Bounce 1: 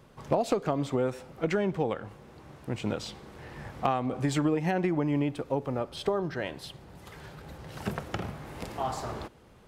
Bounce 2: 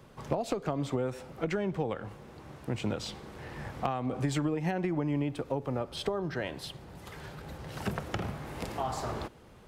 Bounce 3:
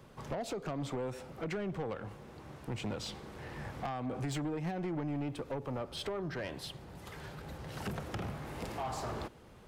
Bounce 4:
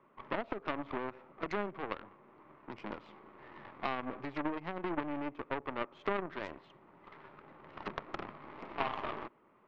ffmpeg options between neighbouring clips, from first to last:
-filter_complex "[0:a]acrossover=split=120[a][b];[b]acompressor=threshold=-32dB:ratio=2.5[c];[a][c]amix=inputs=2:normalize=0,volume=1.5dB"
-af "asoftclip=type=tanh:threshold=-30dB,volume=-1.5dB"
-af "highpass=360,equalizer=f=490:t=q:w=4:g=-10,equalizer=f=750:t=q:w=4:g=-8,equalizer=f=1.1k:t=q:w=4:g=3,equalizer=f=1.6k:t=q:w=4:g=-9,lowpass=f=2k:w=0.5412,lowpass=f=2k:w=1.3066,aeval=exprs='0.0282*(cos(1*acos(clip(val(0)/0.0282,-1,1)))-cos(1*PI/2))+0.00794*(cos(3*acos(clip(val(0)/0.0282,-1,1)))-cos(3*PI/2))+0.00158*(cos(4*acos(clip(val(0)/0.0282,-1,1)))-cos(4*PI/2))':c=same,volume=14dB"

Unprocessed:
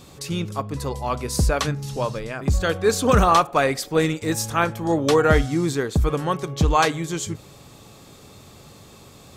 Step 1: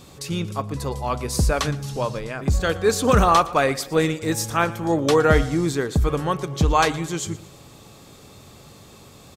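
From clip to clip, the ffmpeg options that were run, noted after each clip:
-af "aecho=1:1:116|232|348|464:0.112|0.0516|0.0237|0.0109"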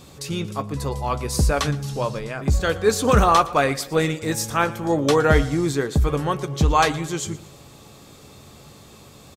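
-filter_complex "[0:a]asplit=2[a][b];[b]adelay=14,volume=-11.5dB[c];[a][c]amix=inputs=2:normalize=0"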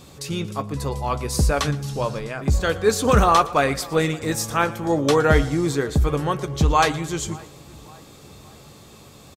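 -filter_complex "[0:a]asplit=2[a][b];[b]adelay=565,lowpass=f=2k:p=1,volume=-23dB,asplit=2[c][d];[d]adelay=565,lowpass=f=2k:p=1,volume=0.52,asplit=2[e][f];[f]adelay=565,lowpass=f=2k:p=1,volume=0.52[g];[a][c][e][g]amix=inputs=4:normalize=0"

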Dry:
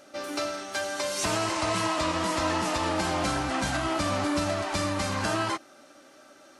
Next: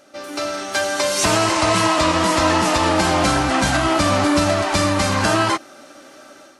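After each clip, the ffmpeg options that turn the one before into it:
-af "dynaudnorm=f=320:g=3:m=9dB,volume=1.5dB"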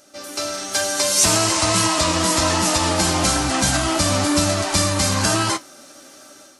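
-af "flanger=delay=9.9:depth=2.4:regen=-61:speed=1.1:shape=sinusoidal,bass=f=250:g=4,treble=f=4k:g=12"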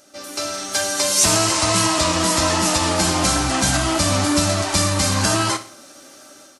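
-af "aecho=1:1:62|124|186|248:0.188|0.0791|0.0332|0.014"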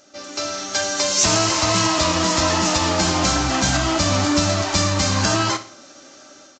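-af "aresample=16000,aresample=44100"

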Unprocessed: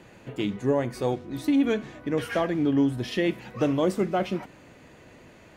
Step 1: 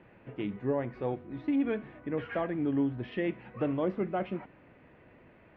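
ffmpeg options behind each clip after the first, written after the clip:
-af "lowpass=f=2.6k:w=0.5412,lowpass=f=2.6k:w=1.3066,volume=-6.5dB"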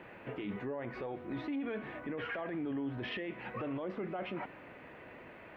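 -af "lowshelf=f=290:g=-11.5,acompressor=threshold=-38dB:ratio=6,alimiter=level_in=16.5dB:limit=-24dB:level=0:latency=1:release=15,volume=-16.5dB,volume=9.5dB"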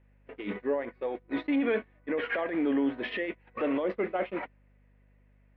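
-af "agate=range=-35dB:threshold=-38dB:ratio=16:detection=peak,equalizer=f=125:t=o:w=1:g=-10,equalizer=f=250:t=o:w=1:g=9,equalizer=f=500:t=o:w=1:g=11,equalizer=f=1k:t=o:w=1:g=5,equalizer=f=2k:t=o:w=1:g=11,equalizer=f=4k:t=o:w=1:g=10,aeval=exprs='val(0)+0.000891*(sin(2*PI*50*n/s)+sin(2*PI*2*50*n/s)/2+sin(2*PI*3*50*n/s)/3+sin(2*PI*4*50*n/s)/4+sin(2*PI*5*50*n/s)/5)':c=same"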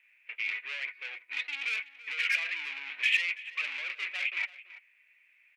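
-filter_complex "[0:a]asoftclip=type=tanh:threshold=-35.5dB,highpass=f=2.4k:t=q:w=6.4,asplit=2[a][b];[b]adelay=332.4,volume=-16dB,highshelf=f=4k:g=-7.48[c];[a][c]amix=inputs=2:normalize=0,volume=6dB"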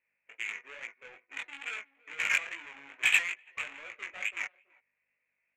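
-af "adynamicsmooth=sensitivity=1.5:basefreq=640,flanger=delay=17.5:depth=4.5:speed=2.3,volume=8dB"

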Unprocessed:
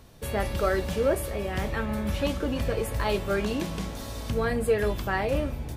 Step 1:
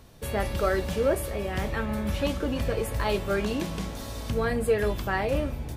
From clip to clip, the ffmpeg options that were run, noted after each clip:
-af anull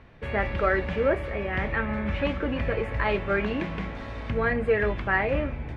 -af "lowpass=f=2.1k:t=q:w=2.4"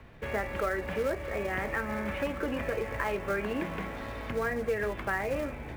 -filter_complex "[0:a]acrossover=split=250|2400[a][b][c];[a]acompressor=threshold=-41dB:ratio=4[d];[b]acompressor=threshold=-29dB:ratio=4[e];[c]acompressor=threshold=-52dB:ratio=4[f];[d][e][f]amix=inputs=3:normalize=0,acrossover=split=500|1400[g][h][i];[h]acrusher=bits=3:mode=log:mix=0:aa=0.000001[j];[g][j][i]amix=inputs=3:normalize=0"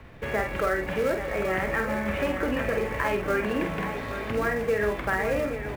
-af "aecho=1:1:48|828:0.501|0.355,volume=4dB"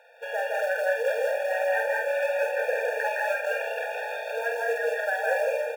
-af "aecho=1:1:163.3|195.3|244.9:0.794|0.708|0.282,afftfilt=real='re*eq(mod(floor(b*sr/1024/470),2),1)':imag='im*eq(mod(floor(b*sr/1024/470),2),1)':win_size=1024:overlap=0.75"

